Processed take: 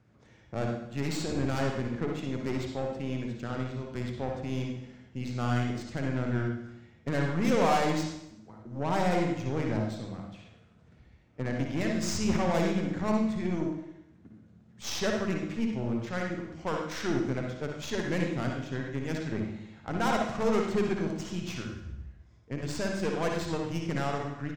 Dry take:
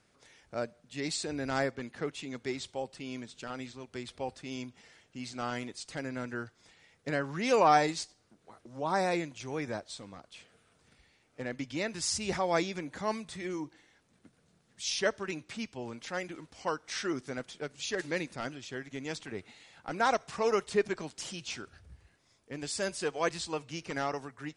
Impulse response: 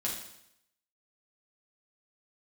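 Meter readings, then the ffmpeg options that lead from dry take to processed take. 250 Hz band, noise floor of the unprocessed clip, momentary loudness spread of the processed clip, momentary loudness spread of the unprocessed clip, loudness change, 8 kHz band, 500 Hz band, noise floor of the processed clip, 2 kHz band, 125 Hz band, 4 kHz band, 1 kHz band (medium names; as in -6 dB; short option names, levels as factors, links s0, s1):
+8.0 dB, -69 dBFS, 13 LU, 14 LU, +3.0 dB, -2.5 dB, +1.5 dB, -58 dBFS, 0.0 dB, +12.0 dB, -1.5 dB, -0.5 dB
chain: -filter_complex "[0:a]highpass=52,bass=f=250:g=13,treble=f=4000:g=4,bandreject=f=50:t=h:w=6,bandreject=f=100:t=h:w=6,bandreject=f=150:t=h:w=6,bandreject=f=200:t=h:w=6,bandreject=f=250:t=h:w=6,bandreject=f=300:t=h:w=6,asoftclip=type=tanh:threshold=0.075,aeval=exprs='0.075*(cos(1*acos(clip(val(0)/0.075,-1,1)))-cos(1*PI/2))+0.0119*(cos(4*acos(clip(val(0)/0.075,-1,1)))-cos(4*PI/2))':c=same,adynamicsmooth=sensitivity=3:basefreq=2300,aexciter=amount=1.6:drive=6.3:freq=6100,asplit=2[s0][s1];[s1]adelay=285.7,volume=0.0562,highshelf=f=4000:g=-6.43[s2];[s0][s2]amix=inputs=2:normalize=0,asplit=2[s3][s4];[1:a]atrim=start_sample=2205,lowpass=7500,adelay=56[s5];[s4][s5]afir=irnorm=-1:irlink=0,volume=0.596[s6];[s3][s6]amix=inputs=2:normalize=0"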